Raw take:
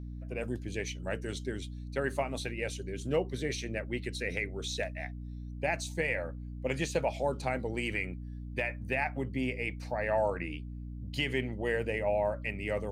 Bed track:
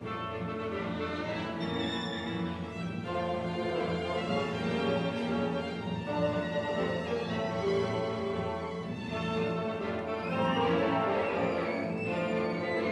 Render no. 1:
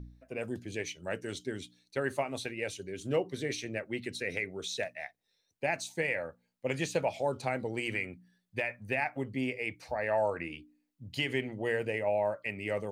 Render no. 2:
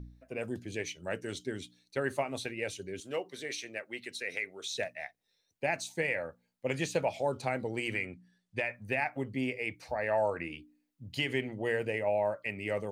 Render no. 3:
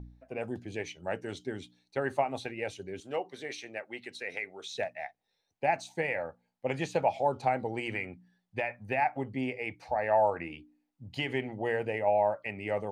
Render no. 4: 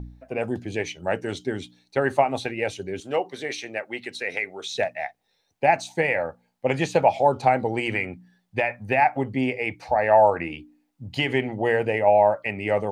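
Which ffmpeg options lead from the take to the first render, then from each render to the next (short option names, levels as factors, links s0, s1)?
-af "bandreject=f=60:t=h:w=4,bandreject=f=120:t=h:w=4,bandreject=f=180:t=h:w=4,bandreject=f=240:t=h:w=4,bandreject=f=300:t=h:w=4"
-filter_complex "[0:a]asettb=1/sr,asplit=3[s0][s1][s2];[s0]atrim=end=3.004[s3];[s1]atrim=start=3:end=4.75,asetpts=PTS-STARTPTS,afade=t=in:d=0.004:c=qsin,afade=t=out:st=1.746:d=0.004:c=qsin,highpass=f=790:p=1[s4];[s2]atrim=start=4.746[s5];[s3][s4]acrossfade=d=0.004:c1=hsin:c2=qsin[s6];[s6][s5]acrossfade=d=0.004:c1=qsin:c2=hsin,asettb=1/sr,asplit=3[s7][s8][s9];[s7]atrim=end=7.994[s10];[s8]atrim=start=7.99:end=8.73,asetpts=PTS-STARTPTS,afade=t=in:d=0.004:c=qsin,afade=t=out:st=0.736:d=0.004:c=qsin,lowpass=f=9700:w=0.5412,lowpass=f=9700:w=1.3066[s11];[s9]atrim=start=8.726[s12];[s10][s11]acrossfade=d=0.004:c1=hsin:c2=qsin[s13];[s13][s12]acrossfade=d=0.004:c1=qsin:c2=hsin"
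-af "lowpass=f=3300:p=1,equalizer=f=800:t=o:w=0.45:g=10"
-af "volume=2.82"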